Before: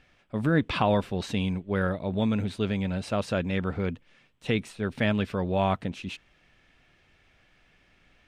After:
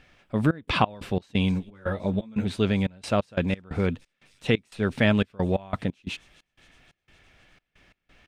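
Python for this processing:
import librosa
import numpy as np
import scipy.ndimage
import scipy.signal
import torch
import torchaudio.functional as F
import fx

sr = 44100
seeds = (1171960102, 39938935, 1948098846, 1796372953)

y = fx.echo_wet_highpass(x, sr, ms=258, feedback_pct=75, hz=5200.0, wet_db=-17.5)
y = fx.step_gate(y, sr, bpm=89, pattern='xxx.x.x.xx.xx.', floor_db=-24.0, edge_ms=4.5)
y = fx.ensemble(y, sr, at=(1.51, 2.45), fade=0.02)
y = y * 10.0 ** (4.5 / 20.0)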